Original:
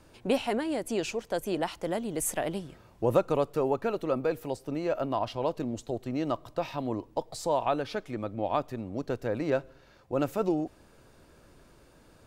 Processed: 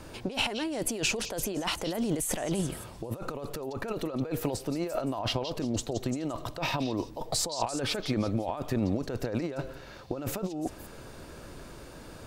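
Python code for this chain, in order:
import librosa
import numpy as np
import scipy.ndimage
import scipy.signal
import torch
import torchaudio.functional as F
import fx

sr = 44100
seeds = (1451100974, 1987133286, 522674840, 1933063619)

y = fx.over_compress(x, sr, threshold_db=-37.0, ratio=-1.0)
y = fx.echo_stepped(y, sr, ms=172, hz=4500.0, octaves=0.7, feedback_pct=70, wet_db=-6.0)
y = y * librosa.db_to_amplitude(5.0)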